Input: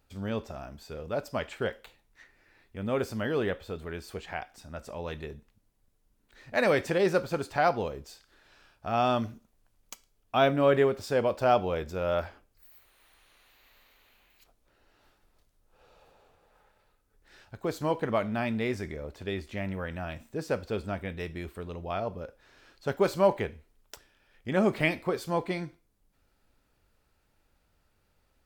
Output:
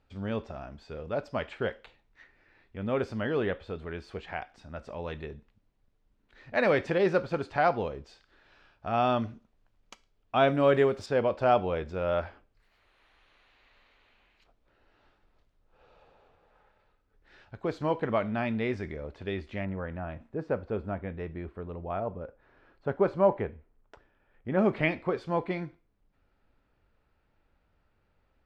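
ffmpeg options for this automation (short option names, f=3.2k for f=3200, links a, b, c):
-af "asetnsamples=n=441:p=0,asendcmd='10.48 lowpass f 7200;11.06 lowpass f 3400;19.65 lowpass f 1500;24.59 lowpass f 2700',lowpass=3.6k"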